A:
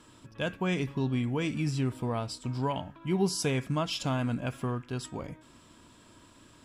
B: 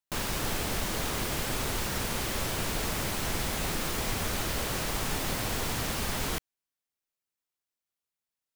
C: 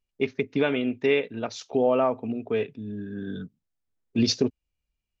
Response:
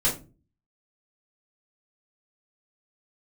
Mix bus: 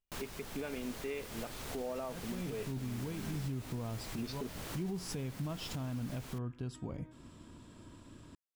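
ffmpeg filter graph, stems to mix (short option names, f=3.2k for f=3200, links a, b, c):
-filter_complex "[0:a]lowshelf=f=450:g=11.5,adelay=1700,volume=-5dB[a];[1:a]volume=-10.5dB[b];[2:a]lowpass=3.3k,volume=-8dB,asplit=2[c][d];[d]apad=whole_len=368207[e];[a][e]sidechaincompress=threshold=-47dB:ratio=8:attack=16:release=118[f];[f][b][c]amix=inputs=3:normalize=0,alimiter=level_in=6dB:limit=-24dB:level=0:latency=1:release=327,volume=-6dB"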